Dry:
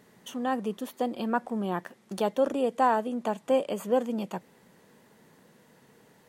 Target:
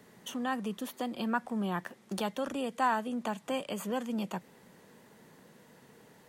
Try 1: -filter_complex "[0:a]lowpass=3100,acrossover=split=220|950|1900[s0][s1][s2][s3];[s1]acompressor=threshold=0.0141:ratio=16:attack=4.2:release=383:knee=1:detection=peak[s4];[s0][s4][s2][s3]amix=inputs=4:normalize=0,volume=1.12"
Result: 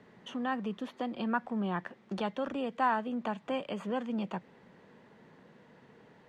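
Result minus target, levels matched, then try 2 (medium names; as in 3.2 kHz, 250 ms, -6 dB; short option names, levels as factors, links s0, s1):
4 kHz band -3.0 dB
-filter_complex "[0:a]acrossover=split=220|950|1900[s0][s1][s2][s3];[s1]acompressor=threshold=0.0141:ratio=16:attack=4.2:release=383:knee=1:detection=peak[s4];[s0][s4][s2][s3]amix=inputs=4:normalize=0,volume=1.12"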